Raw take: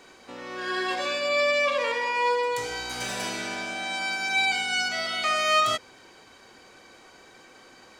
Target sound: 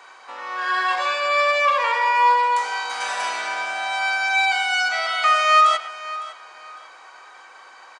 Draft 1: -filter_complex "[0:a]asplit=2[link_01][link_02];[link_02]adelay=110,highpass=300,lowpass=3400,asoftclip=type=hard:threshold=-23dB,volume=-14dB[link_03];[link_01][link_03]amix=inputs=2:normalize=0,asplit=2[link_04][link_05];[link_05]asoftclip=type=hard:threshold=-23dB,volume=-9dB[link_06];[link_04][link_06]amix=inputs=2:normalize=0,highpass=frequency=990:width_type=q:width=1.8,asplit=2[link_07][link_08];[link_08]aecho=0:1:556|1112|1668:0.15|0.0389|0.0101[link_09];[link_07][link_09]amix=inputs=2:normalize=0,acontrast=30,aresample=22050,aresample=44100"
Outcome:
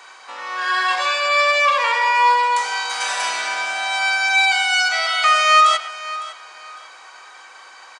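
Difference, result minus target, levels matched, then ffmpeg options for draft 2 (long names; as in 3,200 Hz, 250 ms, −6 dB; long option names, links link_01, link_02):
4,000 Hz band +3.0 dB
-filter_complex "[0:a]asplit=2[link_01][link_02];[link_02]adelay=110,highpass=300,lowpass=3400,asoftclip=type=hard:threshold=-23dB,volume=-14dB[link_03];[link_01][link_03]amix=inputs=2:normalize=0,asplit=2[link_04][link_05];[link_05]asoftclip=type=hard:threshold=-23dB,volume=-9dB[link_06];[link_04][link_06]amix=inputs=2:normalize=0,highpass=frequency=990:width_type=q:width=1.8,highshelf=frequency=2300:gain=-8.5,asplit=2[link_07][link_08];[link_08]aecho=0:1:556|1112|1668:0.15|0.0389|0.0101[link_09];[link_07][link_09]amix=inputs=2:normalize=0,acontrast=30,aresample=22050,aresample=44100"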